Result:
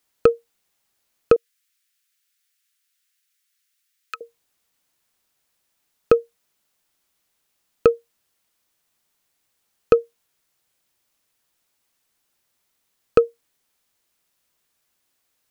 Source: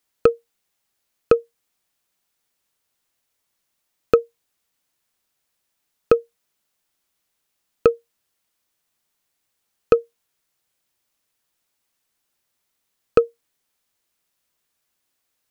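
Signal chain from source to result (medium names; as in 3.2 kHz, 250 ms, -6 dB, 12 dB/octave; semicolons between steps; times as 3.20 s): in parallel at -1.5 dB: peak limiter -11 dBFS, peak gain reduction 9 dB; 1.36–4.21 s: on the sum: inverse Chebyshev high-pass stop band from 740 Hz, stop band 40 dB; trim -2.5 dB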